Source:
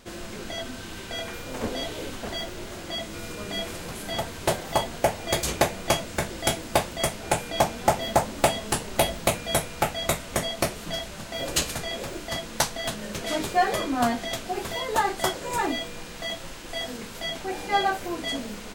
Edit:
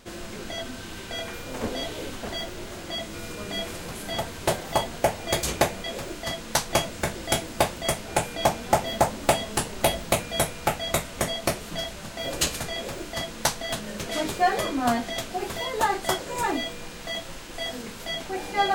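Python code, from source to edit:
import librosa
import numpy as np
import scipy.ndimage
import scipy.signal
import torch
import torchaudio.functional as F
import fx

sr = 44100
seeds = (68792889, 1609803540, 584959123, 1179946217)

y = fx.edit(x, sr, fx.duplicate(start_s=11.89, length_s=0.85, to_s=5.84), tone=tone)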